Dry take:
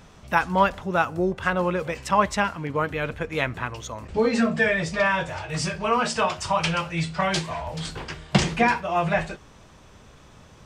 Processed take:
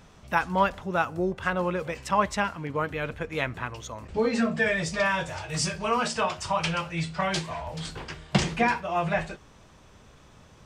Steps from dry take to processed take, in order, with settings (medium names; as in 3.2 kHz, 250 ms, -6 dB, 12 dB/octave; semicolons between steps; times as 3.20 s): 4.66–6.08 s: tone controls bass +1 dB, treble +7 dB; trim -3.5 dB